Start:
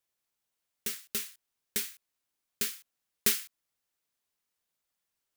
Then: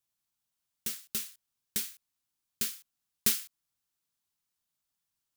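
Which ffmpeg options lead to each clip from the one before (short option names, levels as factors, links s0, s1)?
-af "equalizer=f=125:t=o:w=1:g=4,equalizer=f=500:t=o:w=1:g=-9,equalizer=f=2000:t=o:w=1:g=-5"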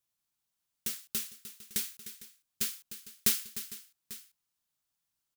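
-af "aecho=1:1:303|454|845:0.224|0.119|0.126"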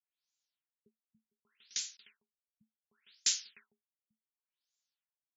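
-af "aderivative,bandreject=f=1200:w=9.3,afftfilt=real='re*lt(b*sr/1024,220*pow(7500/220,0.5+0.5*sin(2*PI*0.68*pts/sr)))':imag='im*lt(b*sr/1024,220*pow(7500/220,0.5+0.5*sin(2*PI*0.68*pts/sr)))':win_size=1024:overlap=0.75,volume=2"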